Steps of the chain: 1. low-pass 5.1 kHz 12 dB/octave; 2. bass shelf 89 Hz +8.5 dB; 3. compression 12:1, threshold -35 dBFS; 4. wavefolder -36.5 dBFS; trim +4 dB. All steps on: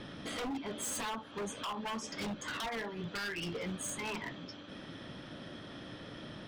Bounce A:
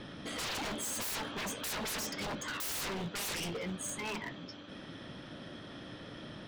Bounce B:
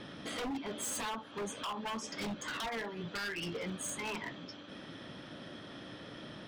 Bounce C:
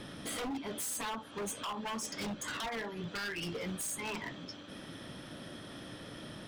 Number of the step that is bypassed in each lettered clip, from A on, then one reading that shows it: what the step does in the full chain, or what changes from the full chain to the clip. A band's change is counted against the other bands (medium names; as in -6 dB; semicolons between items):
3, mean gain reduction 5.5 dB; 2, 125 Hz band -1.5 dB; 1, 8 kHz band +2.5 dB